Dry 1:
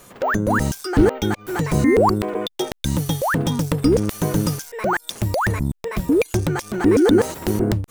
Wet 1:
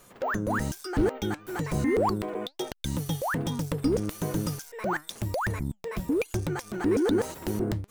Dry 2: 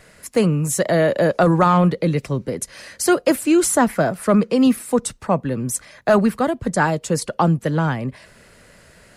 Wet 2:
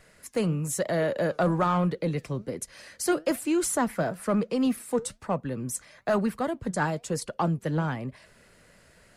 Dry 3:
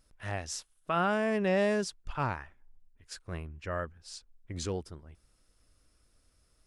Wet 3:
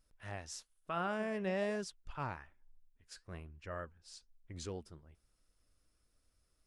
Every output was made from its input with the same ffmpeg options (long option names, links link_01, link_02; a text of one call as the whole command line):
ffmpeg -i in.wav -filter_complex "[0:a]flanger=delay=0.6:depth=6.2:regen=84:speed=1.1:shape=triangular,asplit=2[link_01][link_02];[link_02]volume=20.5dB,asoftclip=hard,volume=-20.5dB,volume=-9.5dB[link_03];[link_01][link_03]amix=inputs=2:normalize=0,volume=-6.5dB" out.wav